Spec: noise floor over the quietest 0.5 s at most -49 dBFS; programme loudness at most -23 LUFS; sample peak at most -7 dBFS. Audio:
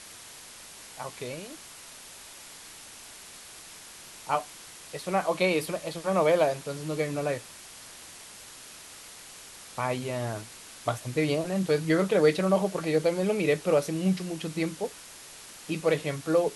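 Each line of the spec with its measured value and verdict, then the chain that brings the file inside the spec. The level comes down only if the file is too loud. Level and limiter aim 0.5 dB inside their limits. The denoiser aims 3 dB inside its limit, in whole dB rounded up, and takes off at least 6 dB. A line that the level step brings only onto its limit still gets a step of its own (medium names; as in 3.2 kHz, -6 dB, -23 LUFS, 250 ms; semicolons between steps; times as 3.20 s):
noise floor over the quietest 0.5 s -47 dBFS: fail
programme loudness -28.0 LUFS: pass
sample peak -10.5 dBFS: pass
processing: noise reduction 6 dB, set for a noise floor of -47 dBFS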